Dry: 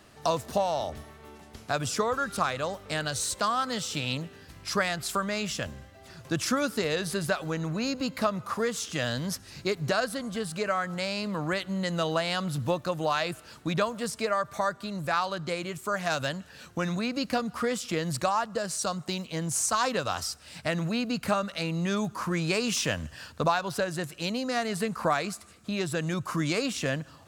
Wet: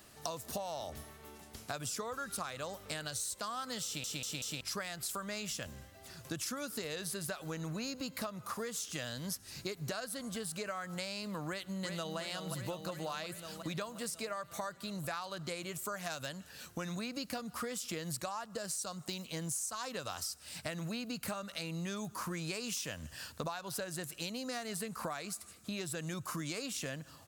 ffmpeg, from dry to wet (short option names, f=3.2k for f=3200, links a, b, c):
-filter_complex "[0:a]asplit=2[a][b];[b]afade=t=in:st=11.48:d=0.01,afade=t=out:st=12.18:d=0.01,aecho=0:1:360|720|1080|1440|1800|2160|2520|2880|3240|3600|3960:0.501187|0.350831|0.245582|0.171907|0.120335|0.0842345|0.0589642|0.0412749|0.0288924|0.0202247|0.0141573[c];[a][c]amix=inputs=2:normalize=0,asplit=5[d][e][f][g][h];[d]atrim=end=4.042[i];[e]atrim=start=3.848:end=4.042[j];[f]atrim=start=3.848:end=4.042[k];[g]atrim=start=3.848:end=4.042[l];[h]atrim=start=4.608[m];[i][j]acrossfade=d=0.004:c1=hsin:c2=hsin[n];[n][k]acrossfade=d=0.004:c1=hsin:c2=hsin[o];[o][l]acrossfade=d=0.004:c1=hsin:c2=hsin[p];[p][m]acrossfade=d=0.004:c1=hsin:c2=hsin,aemphasis=mode=production:type=50kf,acompressor=threshold=-31dB:ratio=6,volume=-5.5dB"